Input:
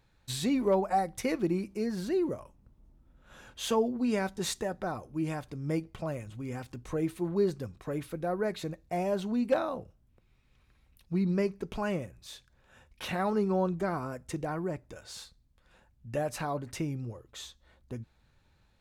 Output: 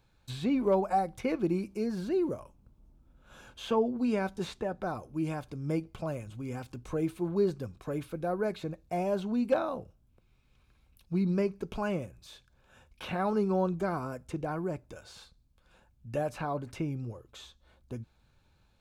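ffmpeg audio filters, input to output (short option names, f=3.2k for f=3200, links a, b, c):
-filter_complex "[0:a]bandreject=f=1.9k:w=6.7,acrossover=split=740|3300[a][b][c];[c]acompressor=threshold=-55dB:ratio=6[d];[a][b][d]amix=inputs=3:normalize=0"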